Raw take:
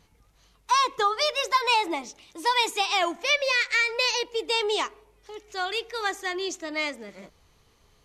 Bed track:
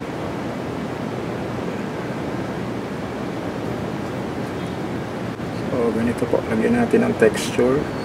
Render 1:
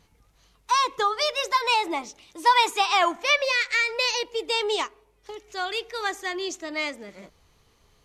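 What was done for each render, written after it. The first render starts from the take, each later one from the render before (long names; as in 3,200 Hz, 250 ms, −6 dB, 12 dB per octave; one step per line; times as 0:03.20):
0:01.94–0:03.45: dynamic equaliser 1,200 Hz, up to +8 dB, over −39 dBFS, Q 1.2
0:04.65–0:05.35: transient designer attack +5 dB, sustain −4 dB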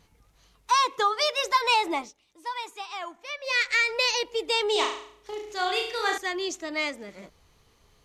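0:00.74–0:01.44: high-pass filter 210 Hz 6 dB per octave
0:02.00–0:03.57: duck −15 dB, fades 0.14 s
0:04.72–0:06.18: flutter between parallel walls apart 6.1 metres, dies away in 0.55 s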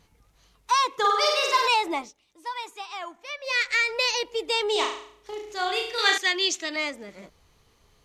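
0:00.98–0:01.68: flutter between parallel walls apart 8.5 metres, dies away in 0.96 s
0:05.98–0:06.76: meter weighting curve D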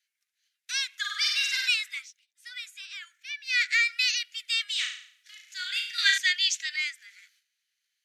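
noise gate −57 dBFS, range −13 dB
Butterworth high-pass 1,500 Hz 72 dB per octave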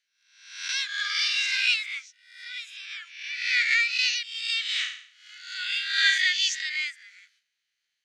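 peak hold with a rise ahead of every peak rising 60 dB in 0.72 s
high-frequency loss of the air 70 metres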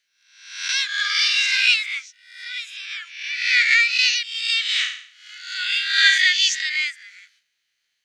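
level +6.5 dB
brickwall limiter −3 dBFS, peak gain reduction 1 dB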